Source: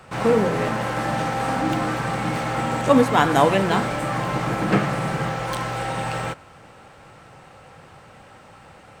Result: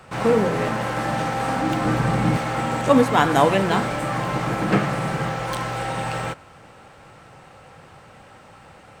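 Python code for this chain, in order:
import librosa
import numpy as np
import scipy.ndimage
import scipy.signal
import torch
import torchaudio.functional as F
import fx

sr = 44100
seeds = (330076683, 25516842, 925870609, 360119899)

y = fx.low_shelf(x, sr, hz=380.0, db=8.5, at=(1.85, 2.37))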